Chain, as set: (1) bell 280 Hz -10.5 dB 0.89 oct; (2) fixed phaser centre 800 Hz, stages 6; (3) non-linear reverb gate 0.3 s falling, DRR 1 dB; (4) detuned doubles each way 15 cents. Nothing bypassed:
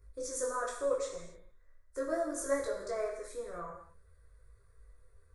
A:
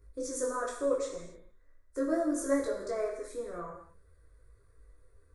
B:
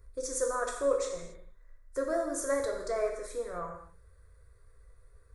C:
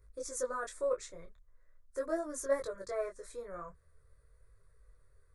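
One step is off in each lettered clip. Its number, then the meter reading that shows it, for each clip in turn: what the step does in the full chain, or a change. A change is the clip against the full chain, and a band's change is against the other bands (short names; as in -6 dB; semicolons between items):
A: 1, 250 Hz band +9.0 dB; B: 4, loudness change +3.5 LU; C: 3, crest factor change +2.0 dB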